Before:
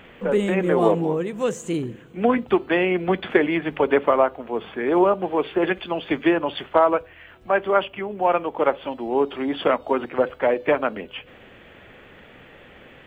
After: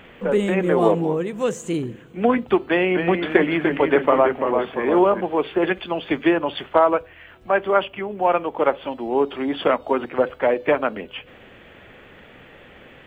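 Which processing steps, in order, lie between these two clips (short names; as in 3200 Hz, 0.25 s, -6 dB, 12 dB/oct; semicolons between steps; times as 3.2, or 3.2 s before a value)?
2.65–5.21 echoes that change speed 0.254 s, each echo -1 st, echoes 3, each echo -6 dB; gain +1 dB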